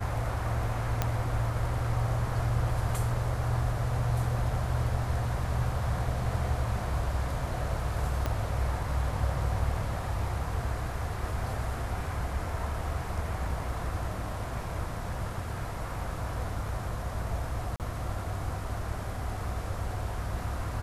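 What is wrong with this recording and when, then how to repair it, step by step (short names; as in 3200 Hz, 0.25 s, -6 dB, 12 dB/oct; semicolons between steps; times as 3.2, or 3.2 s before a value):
1.02 pop -12 dBFS
8.26 pop -16 dBFS
17.76–17.8 gap 38 ms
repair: de-click; interpolate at 17.76, 38 ms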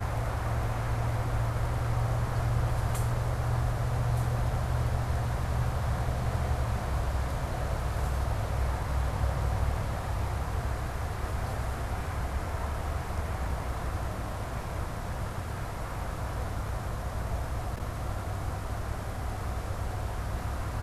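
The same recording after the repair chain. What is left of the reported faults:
8.26 pop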